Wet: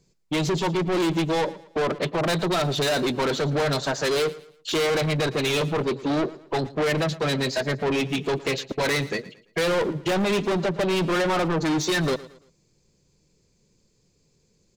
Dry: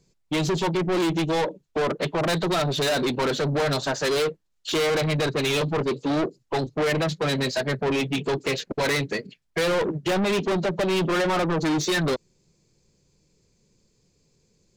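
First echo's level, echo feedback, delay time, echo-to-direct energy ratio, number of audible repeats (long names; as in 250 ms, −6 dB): −18.0 dB, 35%, 113 ms, −17.5 dB, 2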